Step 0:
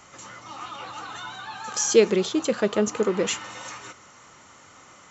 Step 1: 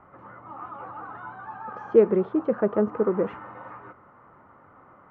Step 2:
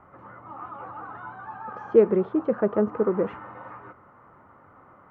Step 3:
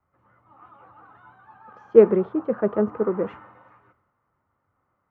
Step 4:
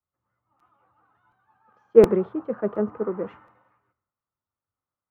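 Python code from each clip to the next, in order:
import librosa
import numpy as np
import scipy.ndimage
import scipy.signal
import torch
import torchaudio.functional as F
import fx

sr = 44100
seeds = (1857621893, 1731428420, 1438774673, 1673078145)

y1 = scipy.signal.sosfilt(scipy.signal.butter(4, 1400.0, 'lowpass', fs=sr, output='sos'), x)
y2 = fx.peak_eq(y1, sr, hz=86.0, db=2.5, octaves=0.77)
y3 = fx.band_widen(y2, sr, depth_pct=70)
y3 = y3 * librosa.db_to_amplitude(-1.5)
y4 = fx.buffer_crackle(y3, sr, first_s=0.59, period_s=0.72, block=256, kind='repeat')
y4 = fx.band_widen(y4, sr, depth_pct=40)
y4 = y4 * librosa.db_to_amplitude(-4.0)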